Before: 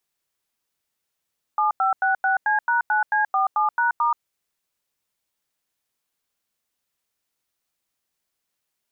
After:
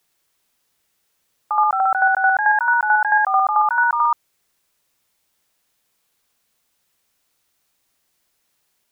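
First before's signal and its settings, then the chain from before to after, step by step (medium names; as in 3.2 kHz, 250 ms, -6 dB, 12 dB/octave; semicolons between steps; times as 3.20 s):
DTMF "7566C#9C47#*", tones 129 ms, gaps 91 ms, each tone -20 dBFS
in parallel at 0 dB: compressor with a negative ratio -26 dBFS, ratio -1; on the sum: reverse echo 73 ms -3.5 dB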